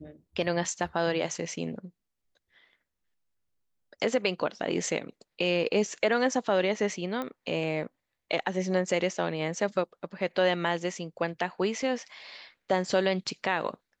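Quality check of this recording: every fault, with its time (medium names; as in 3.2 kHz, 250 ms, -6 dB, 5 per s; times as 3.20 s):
7.22 s: pop -21 dBFS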